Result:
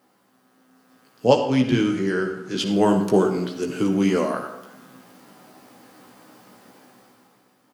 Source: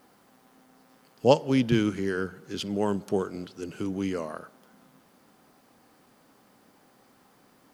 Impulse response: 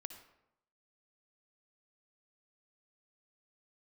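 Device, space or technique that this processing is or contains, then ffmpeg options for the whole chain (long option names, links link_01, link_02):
far laptop microphone: -filter_complex "[0:a]asettb=1/sr,asplit=3[link_01][link_02][link_03];[link_01]atrim=end=1.264[link_04];[link_02]atrim=start=1.26:end=2.71,asetpts=PTS-STARTPTS,afade=type=in:duration=0.004:curve=qsin,afade=type=out:start_time=1.446:duration=0.004:curve=qsin,lowpass=9900[link_05];[link_03]atrim=start=2.706[link_06];[link_04][link_05]acrossfade=duration=0.004:curve1=hsin:curve2=qsin[link_07];[link_07][link_06]acrossfade=duration=0.004:curve1=qsin:curve2=hsin,asplit=2[link_08][link_09];[link_09]adelay=16,volume=-5dB[link_10];[link_08][link_10]amix=inputs=2:normalize=0[link_11];[1:a]atrim=start_sample=2205[link_12];[link_11][link_12]afir=irnorm=-1:irlink=0,highpass=110,dynaudnorm=framelen=140:gausssize=13:maxgain=13.5dB"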